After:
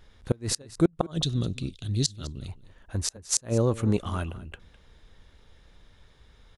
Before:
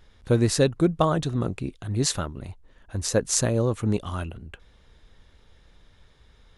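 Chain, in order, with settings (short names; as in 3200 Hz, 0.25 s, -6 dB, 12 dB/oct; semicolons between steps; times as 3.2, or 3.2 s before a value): 1.11–2.48 EQ curve 140 Hz 0 dB, 560 Hz -8 dB, 870 Hz -15 dB, 2300 Hz -5 dB, 3500 Hz +10 dB, 11000 Hz -1 dB; flipped gate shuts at -10 dBFS, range -31 dB; echo 0.207 s -18.5 dB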